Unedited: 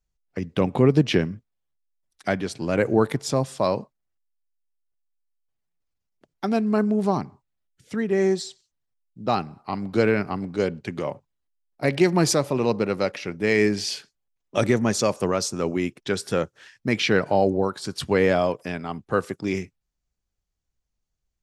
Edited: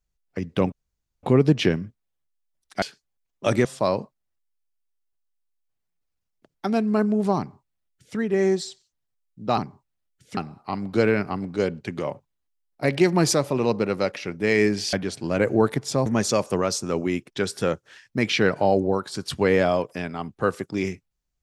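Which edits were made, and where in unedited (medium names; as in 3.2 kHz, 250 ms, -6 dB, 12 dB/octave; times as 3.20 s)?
0.72 s: insert room tone 0.51 s
2.31–3.44 s: swap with 13.93–14.76 s
7.17–7.96 s: copy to 9.37 s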